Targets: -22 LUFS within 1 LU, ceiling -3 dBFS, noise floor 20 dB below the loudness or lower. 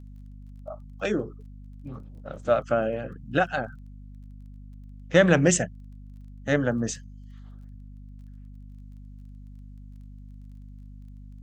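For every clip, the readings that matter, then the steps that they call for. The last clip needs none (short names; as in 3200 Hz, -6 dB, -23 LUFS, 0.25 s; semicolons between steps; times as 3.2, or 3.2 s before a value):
ticks 20/s; hum 50 Hz; harmonics up to 250 Hz; hum level -41 dBFS; loudness -25.5 LUFS; peak -4.0 dBFS; loudness target -22.0 LUFS
-> de-click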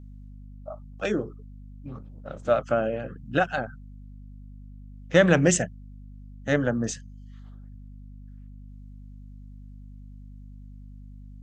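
ticks 0/s; hum 50 Hz; harmonics up to 250 Hz; hum level -41 dBFS
-> notches 50/100/150/200/250 Hz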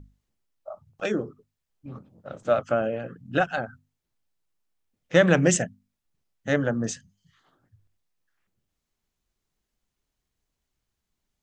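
hum none; loudness -25.0 LUFS; peak -4.0 dBFS; loudness target -22.0 LUFS
-> gain +3 dB; limiter -3 dBFS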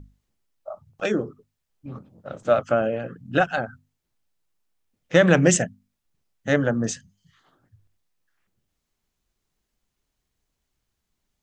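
loudness -22.5 LUFS; peak -3.0 dBFS; noise floor -80 dBFS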